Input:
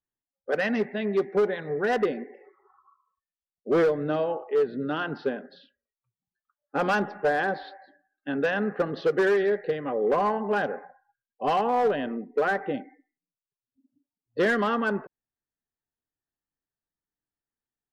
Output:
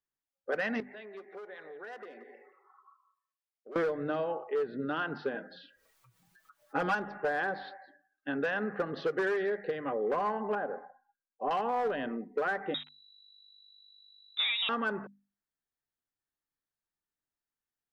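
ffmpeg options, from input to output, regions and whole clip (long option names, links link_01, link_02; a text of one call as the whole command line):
ffmpeg -i in.wav -filter_complex "[0:a]asettb=1/sr,asplit=3[link_01][link_02][link_03];[link_01]atrim=end=0.804[link_04];[link_02]atrim=start=0.8:end=3.76,asetpts=PTS-STARTPTS,afade=type=in:duration=0.004:curve=qsin,afade=type=out:start_time=2.956:duration=0.004:curve=qsin,highpass=420,acompressor=threshold=-45dB:ratio=3:attack=3.2:release=140:knee=1:detection=peak,aecho=1:1:176:0.178,atrim=end_sample=130536[link_05];[link_03]atrim=start=3.756[link_06];[link_04][link_05]acrossfade=duration=0.004:curve1=hsin:curve2=qsin[link_07];[link_07][link_06]acrossfade=duration=0.004:curve1=qsin:curve2=hsin,asettb=1/sr,asplit=3[link_08][link_09][link_10];[link_08]atrim=end=5.344[link_11];[link_09]atrim=start=5.34:end=6.95,asetpts=PTS-STARTPTS,afade=type=in:duration=0.004:curve=qsin,afade=type=out:start_time=1.606:duration=0.004:curve=qsin,aecho=1:1:6.2:0.95,atrim=end_sample=71001,acompressor=mode=upward:threshold=-44dB:ratio=2.5:attack=3.2:release=140:knee=2.83:detection=peak[link_12];[link_10]atrim=start=6.946[link_13];[link_11][link_12]acrossfade=duration=0.004:curve1=hsin:curve2=qsin[link_14];[link_14][link_13]acrossfade=duration=0.004:curve1=qsin:curve2=hsin,asettb=1/sr,asplit=3[link_15][link_16][link_17];[link_15]atrim=end=10.554[link_18];[link_16]atrim=start=10.55:end=11.51,asetpts=PTS-STARTPTS,afade=type=in:duration=0.004:curve=qsin,afade=type=out:start_time=0.956:duration=0.004:curve=qsin,lowpass=1100,equalizer=frequency=100:width=1.2:gain=-15[link_19];[link_17]atrim=start=11.506[link_20];[link_18][link_19]acrossfade=duration=0.004:curve1=hsin:curve2=qsin[link_21];[link_21][link_20]acrossfade=duration=0.004:curve1=qsin:curve2=hsin,asettb=1/sr,asplit=3[link_22][link_23][link_24];[link_22]atrim=end=12.744[link_25];[link_23]atrim=start=12.74:end=14.69,asetpts=PTS-STARTPTS,afade=type=in:duration=0.004:curve=qsin,afade=type=out:start_time=1.946:duration=0.004:curve=qsin,aeval=exprs='val(0)*gte(abs(val(0)),0.0075)':channel_layout=same,aeval=exprs='val(0)+0.00178*(sin(2*PI*50*n/s)+sin(2*PI*2*50*n/s)/2+sin(2*PI*3*50*n/s)/3+sin(2*PI*4*50*n/s)/4+sin(2*PI*5*50*n/s)/5)':channel_layout=same,lowpass=frequency=3400:width_type=q:width=0.5098,lowpass=frequency=3400:width_type=q:width=0.6013,lowpass=frequency=3400:width_type=q:width=0.9,lowpass=frequency=3400:width_type=q:width=2.563,afreqshift=-4000[link_26];[link_24]atrim=start=14.686[link_27];[link_25][link_26]acrossfade=duration=0.004:curve1=hsin:curve2=qsin[link_28];[link_28][link_27]acrossfade=duration=0.004:curve1=qsin:curve2=hsin,equalizer=frequency=1400:width=0.91:gain=4.5,bandreject=frequency=50:width_type=h:width=6,bandreject=frequency=100:width_type=h:width=6,bandreject=frequency=150:width_type=h:width=6,bandreject=frequency=200:width_type=h:width=6,bandreject=frequency=250:width_type=h:width=6,acompressor=threshold=-26dB:ratio=2.5,volume=-4dB" out.wav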